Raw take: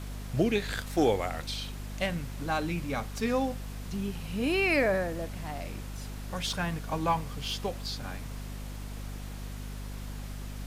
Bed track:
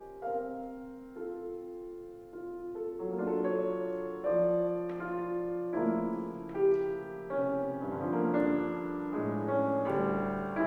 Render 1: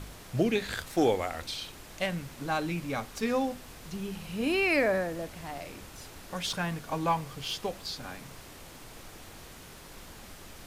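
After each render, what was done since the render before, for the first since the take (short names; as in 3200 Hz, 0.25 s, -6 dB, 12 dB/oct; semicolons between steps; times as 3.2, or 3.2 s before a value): de-hum 50 Hz, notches 5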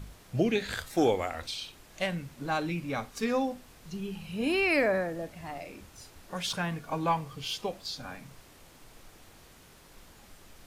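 noise print and reduce 7 dB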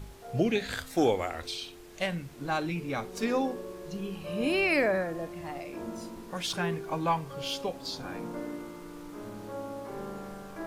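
add bed track -9 dB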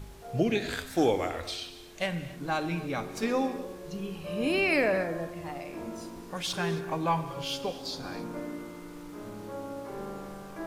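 non-linear reverb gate 0.3 s flat, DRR 10.5 dB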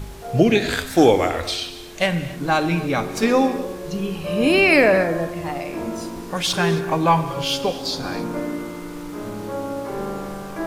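gain +11 dB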